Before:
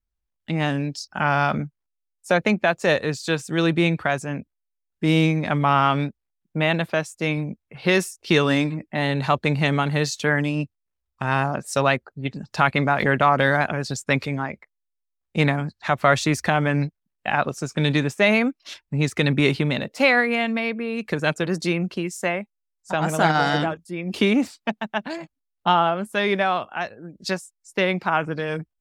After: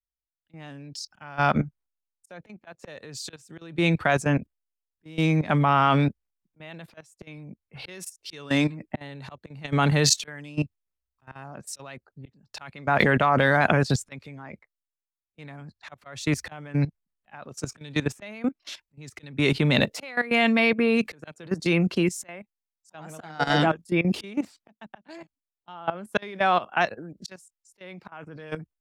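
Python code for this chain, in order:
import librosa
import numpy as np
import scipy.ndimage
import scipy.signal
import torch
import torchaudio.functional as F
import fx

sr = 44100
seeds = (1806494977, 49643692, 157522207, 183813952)

y = fx.auto_swell(x, sr, attack_ms=748.0)
y = fx.level_steps(y, sr, step_db=15)
y = fx.band_widen(y, sr, depth_pct=40)
y = y * 10.0 ** (9.0 / 20.0)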